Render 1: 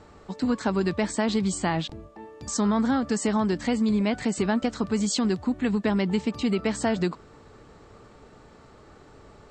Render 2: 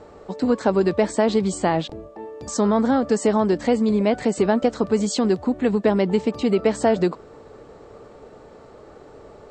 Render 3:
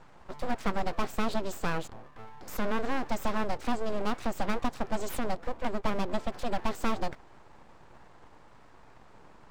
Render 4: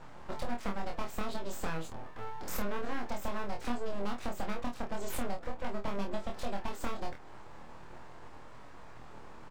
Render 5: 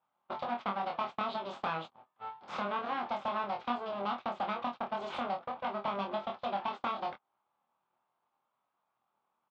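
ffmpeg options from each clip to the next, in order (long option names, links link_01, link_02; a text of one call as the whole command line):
ffmpeg -i in.wav -af "equalizer=frequency=520:width=0.94:gain=11" out.wav
ffmpeg -i in.wav -af "aeval=exprs='abs(val(0))':channel_layout=same,volume=-8dB" out.wav
ffmpeg -i in.wav -af "acompressor=threshold=-34dB:ratio=6,aecho=1:1:25|50:0.708|0.251,volume=2dB" out.wav
ffmpeg -i in.wav -af "agate=range=-33dB:threshold=-35dB:ratio=16:detection=peak,highpass=260,equalizer=frequency=300:width_type=q:width=4:gain=-8,equalizer=frequency=450:width_type=q:width=4:gain=-8,equalizer=frequency=810:width_type=q:width=4:gain=5,equalizer=frequency=1200:width_type=q:width=4:gain=6,equalizer=frequency=1800:width_type=q:width=4:gain=-7,equalizer=frequency=3400:width_type=q:width=4:gain=4,lowpass=frequency=3800:width=0.5412,lowpass=frequency=3800:width=1.3066,volume=3.5dB" out.wav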